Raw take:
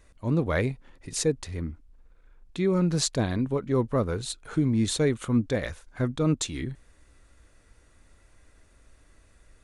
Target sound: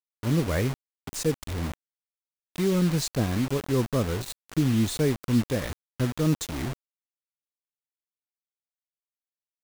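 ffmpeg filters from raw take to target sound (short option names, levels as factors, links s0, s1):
-af "lowshelf=f=440:g=6.5,acrusher=bits=4:mix=0:aa=0.000001,volume=0.596"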